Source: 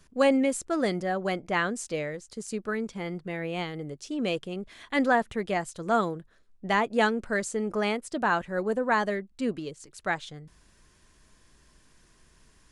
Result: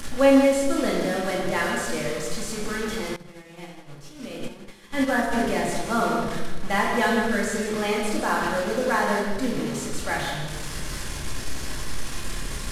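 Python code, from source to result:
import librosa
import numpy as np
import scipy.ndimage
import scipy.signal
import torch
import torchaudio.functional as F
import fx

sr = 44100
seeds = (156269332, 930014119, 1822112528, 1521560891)

y = fx.delta_mod(x, sr, bps=64000, step_db=-29.0)
y = fx.doubler(y, sr, ms=29.0, db=-8.5)
y = y + 10.0 ** (-9.0 / 20.0) * np.pad(y, (int(158 * sr / 1000.0), 0))[:len(y)]
y = fx.room_shoebox(y, sr, seeds[0], volume_m3=910.0, walls='mixed', distance_m=2.3)
y = fx.upward_expand(y, sr, threshold_db=-28.0, expansion=2.5, at=(3.16, 5.33))
y = y * librosa.db_to_amplitude(-3.0)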